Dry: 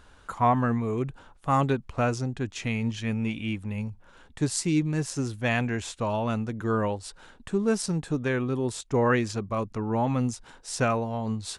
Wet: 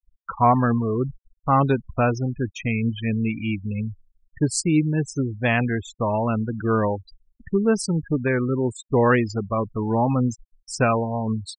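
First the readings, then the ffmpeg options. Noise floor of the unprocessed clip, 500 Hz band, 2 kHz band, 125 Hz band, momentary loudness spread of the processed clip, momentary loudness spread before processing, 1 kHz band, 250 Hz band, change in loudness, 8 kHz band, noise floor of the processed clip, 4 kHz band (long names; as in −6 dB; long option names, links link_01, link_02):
−54 dBFS, +5.0 dB, +4.5 dB, +5.0 dB, 8 LU, 8 LU, +5.0 dB, +5.0 dB, +5.0 dB, +2.0 dB, −74 dBFS, +0.5 dB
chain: -af "afftfilt=real='re*gte(hypot(re,im),0.0316)':imag='im*gte(hypot(re,im),0.0316)':win_size=1024:overlap=0.75,agate=range=-33dB:threshold=-58dB:ratio=3:detection=peak,volume=5dB"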